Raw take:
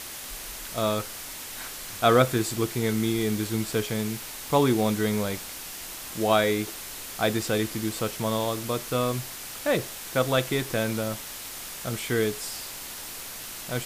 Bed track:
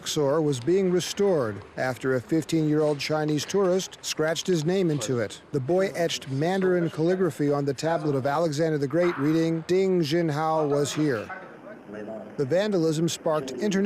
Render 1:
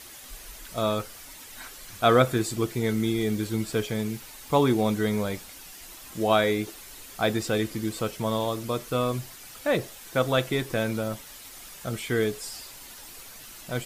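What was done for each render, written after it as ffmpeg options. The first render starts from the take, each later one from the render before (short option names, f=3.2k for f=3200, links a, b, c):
-af "afftdn=nr=9:nf=-39"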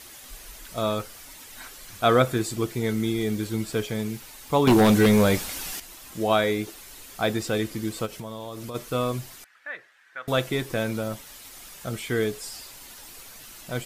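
-filter_complex "[0:a]asettb=1/sr,asplit=3[a][b][c];[a]atrim=end=4.674[d];[b]atrim=start=4.67:end=5.8,asetpts=PTS-STARTPTS,afade=t=in:d=0.004:c=qsin,afade=t=out:st=1.126:d=0.004:c=qsin,aeval=exprs='0.237*sin(PI/2*2.24*val(0)/0.237)':c=same[e];[c]atrim=start=5.796[f];[d][e]acrossfade=d=0.004:c1=hsin:c2=qsin[g];[g][f]acrossfade=d=0.004:c1=qsin:c2=hsin,asplit=3[h][i][j];[h]afade=t=out:st=8.05:d=0.02[k];[i]acompressor=threshold=-32dB:ratio=6:attack=3.2:release=140:knee=1:detection=peak,afade=t=in:st=8.05:d=0.02,afade=t=out:st=8.74:d=0.02[l];[j]afade=t=in:st=8.74:d=0.02[m];[k][l][m]amix=inputs=3:normalize=0,asettb=1/sr,asplit=3[n][o][p];[n]atrim=end=9.444[q];[o]atrim=start=9.44:end=10.28,asetpts=PTS-STARTPTS,afade=t=in:d=0.004:c=qsin,afade=t=out:st=0.836:d=0.004:c=qsin,bandpass=f=1.7k:t=q:w=4.3[r];[p]atrim=start=10.276[s];[q][r]acrossfade=d=0.004:c1=hsin:c2=qsin[t];[t][s]acrossfade=d=0.004:c1=qsin:c2=hsin"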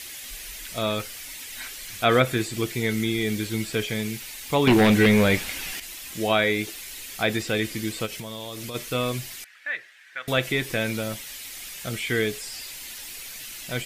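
-filter_complex "[0:a]acrossover=split=2700[a][b];[b]acompressor=threshold=-42dB:ratio=4:attack=1:release=60[c];[a][c]amix=inputs=2:normalize=0,highshelf=f=1.6k:t=q:w=1.5:g=8"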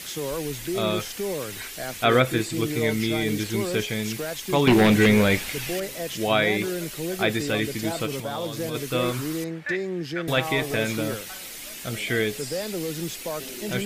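-filter_complex "[1:a]volume=-7dB[a];[0:a][a]amix=inputs=2:normalize=0"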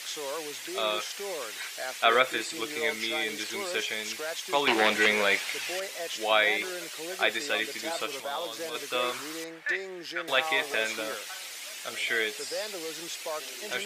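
-filter_complex "[0:a]acrossover=split=8600[a][b];[b]acompressor=threshold=-51dB:ratio=4:attack=1:release=60[c];[a][c]amix=inputs=2:normalize=0,highpass=650"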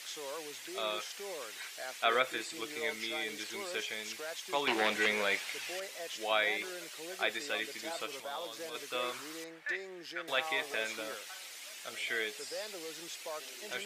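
-af "volume=-7dB"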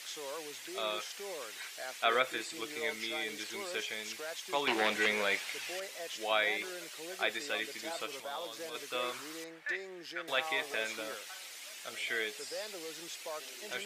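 -af anull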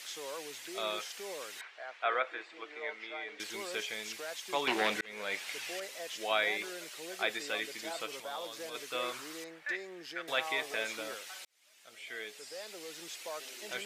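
-filter_complex "[0:a]asettb=1/sr,asplit=3[a][b][c];[a]atrim=end=1.614[d];[b]atrim=start=1.61:end=3.4,asetpts=PTS-STARTPTS,afade=t=in:d=0.004:c=qsin,afade=t=out:st=1.786:d=0.004:c=qsin,highpass=540,lowpass=2k[e];[c]atrim=start=3.396[f];[d][e]acrossfade=d=0.004:c1=hsin:c2=qsin[g];[g][f]acrossfade=d=0.004:c1=qsin:c2=hsin,asplit=3[h][i][j];[h]atrim=end=5.01,asetpts=PTS-STARTPTS,afade=t=out:st=5.006:d=0.004:c=hsin[k];[i]atrim=start=5.01:end=11.45,asetpts=PTS-STARTPTS,afade=t=in:d=0.52,afade=t=out:st=6.436:d=0.004:c=hsin[l];[j]atrim=start=11.45,asetpts=PTS-STARTPTS,afade=t=in:d=1.77[m];[k][l][m]concat=n=3:v=0:a=1"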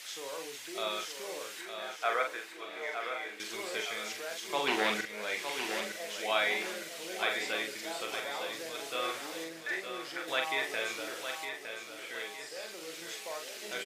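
-filter_complex "[0:a]asplit=2[a][b];[b]adelay=43,volume=-5dB[c];[a][c]amix=inputs=2:normalize=0,aecho=1:1:911|1822|2733|3644|4555:0.422|0.194|0.0892|0.041|0.0189"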